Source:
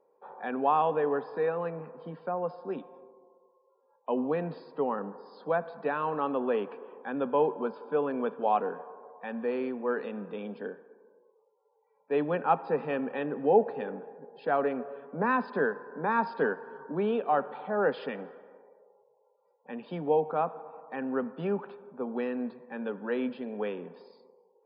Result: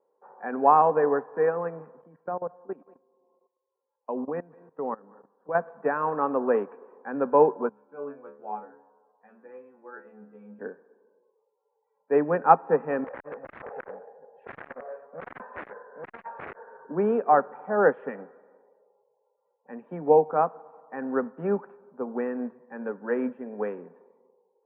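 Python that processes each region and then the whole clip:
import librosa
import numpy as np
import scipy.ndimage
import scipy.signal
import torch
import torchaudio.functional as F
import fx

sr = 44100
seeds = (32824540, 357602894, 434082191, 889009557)

y = fx.chain(x, sr, fx.echo_single(ms=191, db=-15.0),
    fx.level_steps(step_db=16), at=(1.99, 5.55))
y = fx.chain(y, sr, fx.high_shelf(hz=3600.0, db=4.5),
    fx.stiff_resonator(f0_hz=69.0, decay_s=0.49, stiffness=0.002), at=(7.69, 10.59))
y = fx.chain(y, sr, fx.low_shelf_res(hz=420.0, db=-8.0, q=3.0),
    fx.overflow_wrap(gain_db=26.5),
    fx.transformer_sat(knee_hz=620.0), at=(13.04, 16.85))
y = scipy.signal.sosfilt(scipy.signal.butter(6, 2000.0, 'lowpass', fs=sr, output='sos'), y)
y = fx.low_shelf(y, sr, hz=76.0, db=-11.5)
y = fx.upward_expand(y, sr, threshold_db=-46.0, expansion=1.5)
y = y * 10.0 ** (9.0 / 20.0)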